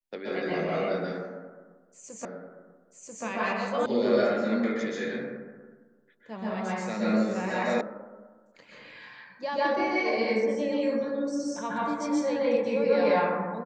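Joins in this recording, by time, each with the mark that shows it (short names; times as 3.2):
2.25 repeat of the last 0.99 s
3.86 sound cut off
7.81 sound cut off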